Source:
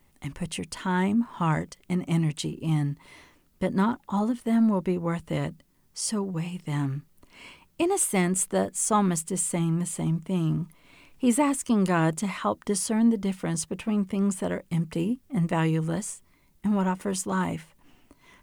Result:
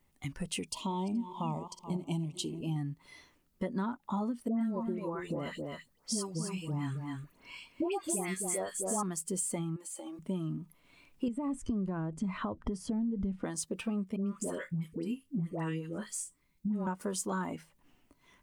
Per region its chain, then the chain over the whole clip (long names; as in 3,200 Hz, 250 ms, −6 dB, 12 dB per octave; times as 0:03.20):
0:00.69–0:02.76: feedback delay that plays each chunk backwards 213 ms, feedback 43%, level −10 dB + Chebyshev band-stop filter 990–2,600 Hz
0:04.48–0:09.03: all-pass dispersion highs, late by 129 ms, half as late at 1,400 Hz + single-tap delay 265 ms −7.5 dB
0:09.76–0:10.19: high-pass filter 340 Hz 24 dB per octave + downward compressor 5 to 1, threshold −40 dBFS + comb filter 3.6 ms
0:11.28–0:13.44: downward compressor, threshold −29 dBFS + RIAA equalisation playback
0:14.16–0:16.87: parametric band 760 Hz −5 dB 0.8 octaves + tuned comb filter 53 Hz, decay 0.24 s, mix 40% + all-pass dispersion highs, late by 106 ms, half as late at 940 Hz
whole clip: downward compressor 5 to 1, threshold −31 dBFS; noise reduction from a noise print of the clip's start 9 dB